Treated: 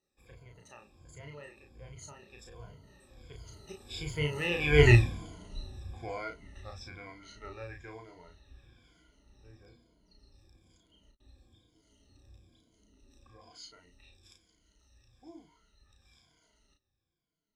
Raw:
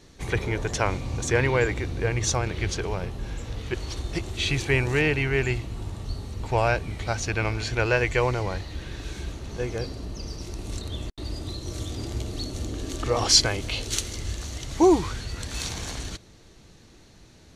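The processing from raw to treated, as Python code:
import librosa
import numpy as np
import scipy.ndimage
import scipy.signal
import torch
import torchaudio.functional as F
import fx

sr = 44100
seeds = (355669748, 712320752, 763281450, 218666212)

y = fx.spec_ripple(x, sr, per_octave=1.8, drift_hz=-1.2, depth_db=19)
y = fx.doppler_pass(y, sr, speed_mps=38, closest_m=4.1, pass_at_s=4.88)
y = fx.room_early_taps(y, sr, ms=(34, 52), db=(-4.0, -17.0))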